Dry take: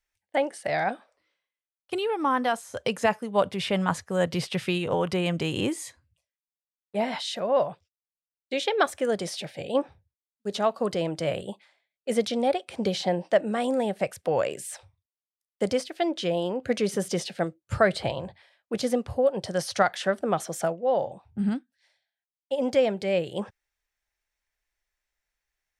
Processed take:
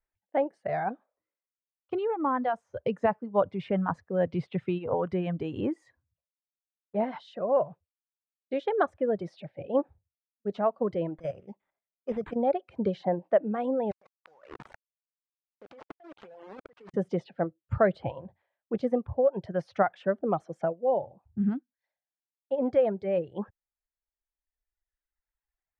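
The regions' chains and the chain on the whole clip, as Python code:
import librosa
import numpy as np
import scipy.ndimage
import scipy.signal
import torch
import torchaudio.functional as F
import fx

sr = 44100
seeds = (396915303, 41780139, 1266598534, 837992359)

y = fx.chain(x, sr, fx.level_steps(step_db=9),
    fx.resample_bad(factor=8, down='none', up='hold'), at=(11.17, 12.36))
y = fx.chain(y, sr, fx.delta_hold(step_db=-26.0),
    fx.highpass(hz=1200.0, slope=6),
    fx.over_compress(threshold_db=-43.0, ratio=-1.0), at=(13.91, 16.94))
y = scipy.signal.sosfilt(scipy.signal.bessel(2, 980.0, 'lowpass', norm='mag', fs=sr, output='sos'), y)
y = fx.dereverb_blind(y, sr, rt60_s=1.9)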